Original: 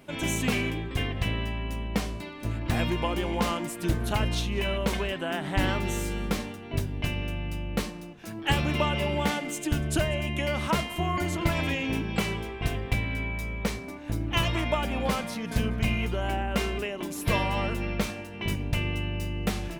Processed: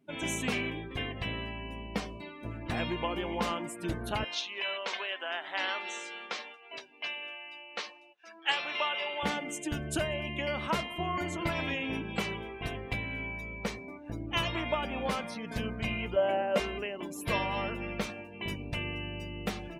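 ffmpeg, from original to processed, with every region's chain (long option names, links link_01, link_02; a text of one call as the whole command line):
ffmpeg -i in.wav -filter_complex "[0:a]asettb=1/sr,asplit=3[link_01][link_02][link_03];[link_01]atrim=end=4.244[link_04];[link_02]atrim=start=4.24:end=9.23,asetpts=PTS-STARTPTS,afade=type=in:duration=0.004:curve=qsin,afade=type=out:start_time=4.986:duration=0.004:curve=qsin,highpass=670,lowpass=5600,highshelf=frequency=2300:gain=5[link_05];[link_03]atrim=start=9.226[link_06];[link_04][link_05]acrossfade=duration=0.004:curve1=hsin:curve2=qsin[link_07];[link_07][link_06]acrossfade=duration=0.004:curve1=qsin:curve2=hsin,asettb=1/sr,asplit=3[link_08][link_09][link_10];[link_08]atrim=end=16.164[link_11];[link_09]atrim=start=16.16:end=16.6,asetpts=PTS-STARTPTS,afade=type=in:duration=0.004:curve=qsin,afade=type=out:start_time=0.436:duration=0.004:curve=qsin,highpass=frequency=140:width=0.5412,highpass=frequency=140:width=1.3066,equalizer=frequency=580:width_type=o:width=0.42:gain=13[link_12];[link_10]atrim=start=16.596[link_13];[link_11][link_12]acrossfade=duration=0.004:curve1=hsin:curve2=qsin[link_14];[link_14][link_13]acrossfade=duration=0.004:curve1=qsin:curve2=hsin,afftdn=noise_reduction=21:noise_floor=-43,lowshelf=frequency=160:gain=-10,volume=-3dB" out.wav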